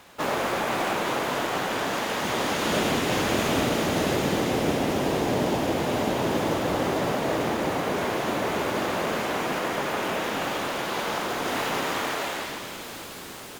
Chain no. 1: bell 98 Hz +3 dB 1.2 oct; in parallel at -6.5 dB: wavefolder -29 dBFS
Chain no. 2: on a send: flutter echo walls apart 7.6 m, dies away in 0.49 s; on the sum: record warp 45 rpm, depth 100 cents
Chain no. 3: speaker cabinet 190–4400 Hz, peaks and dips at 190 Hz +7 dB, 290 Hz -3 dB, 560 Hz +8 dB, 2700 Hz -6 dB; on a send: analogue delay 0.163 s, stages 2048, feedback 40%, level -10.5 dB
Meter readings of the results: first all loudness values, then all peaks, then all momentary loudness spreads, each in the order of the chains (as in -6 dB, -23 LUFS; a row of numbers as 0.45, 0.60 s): -25.5, -24.5, -24.5 LUFS; -11.0, -10.5, -9.5 dBFS; 3, 4, 4 LU